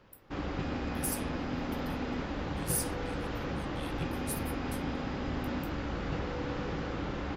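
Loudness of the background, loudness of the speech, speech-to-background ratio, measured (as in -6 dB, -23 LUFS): -36.0 LUFS, -39.0 LUFS, -3.0 dB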